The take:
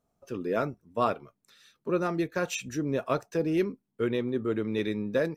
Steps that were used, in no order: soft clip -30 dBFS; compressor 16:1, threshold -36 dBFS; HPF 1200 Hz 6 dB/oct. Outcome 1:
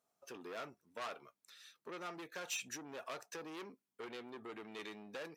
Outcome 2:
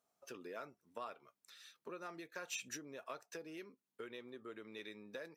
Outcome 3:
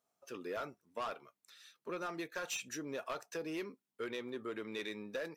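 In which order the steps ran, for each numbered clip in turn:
soft clip > compressor > HPF; compressor > HPF > soft clip; HPF > soft clip > compressor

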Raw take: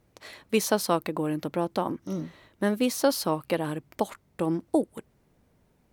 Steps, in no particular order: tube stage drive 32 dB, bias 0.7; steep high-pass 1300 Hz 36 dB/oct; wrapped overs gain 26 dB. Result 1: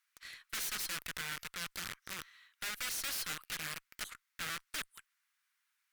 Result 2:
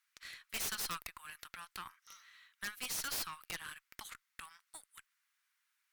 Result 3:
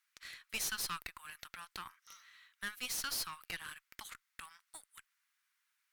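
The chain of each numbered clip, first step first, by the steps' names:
wrapped overs > steep high-pass > tube stage; steep high-pass > wrapped overs > tube stage; steep high-pass > tube stage > wrapped overs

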